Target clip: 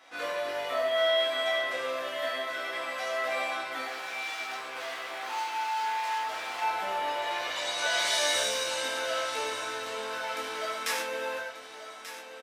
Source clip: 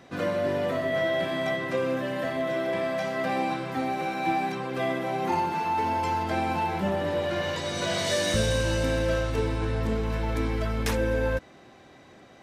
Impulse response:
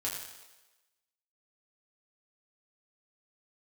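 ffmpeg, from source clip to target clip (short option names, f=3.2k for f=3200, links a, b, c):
-filter_complex "[0:a]aecho=1:1:1186|2372|3558|4744|5930:0.251|0.116|0.0532|0.0244|0.0112,asettb=1/sr,asplit=3[a][b][c];[a]atrim=end=3.864[d];[b]atrim=start=3.86:end=6.62,asetpts=PTS-STARTPTS,afade=t=in:d=0.004:c=qsin,afade=t=out:st=2.756:d=0.004:c=qsin,asoftclip=type=hard:threshold=-32dB[e];[c]atrim=start=6.616[f];[d][e]acrossfade=d=0.004:c1=hsin:c2=qsin[g];[g][f]acrossfade=d=0.004:c1=qsin:c2=hsin,highpass=800[h];[1:a]atrim=start_sample=2205,atrim=end_sample=6174[i];[h][i]afir=irnorm=-1:irlink=0"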